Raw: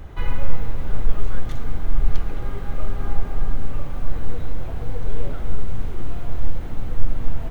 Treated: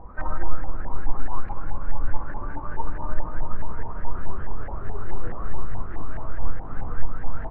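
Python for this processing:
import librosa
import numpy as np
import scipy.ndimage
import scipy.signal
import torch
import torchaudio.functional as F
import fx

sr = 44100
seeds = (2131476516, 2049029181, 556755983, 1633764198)

y = fx.pitch_glide(x, sr, semitones=-8.5, runs='ending unshifted')
y = fx.filter_lfo_lowpass(y, sr, shape='saw_up', hz=4.7, low_hz=820.0, high_hz=1800.0, q=6.8)
y = F.gain(torch.from_numpy(y), -3.0).numpy()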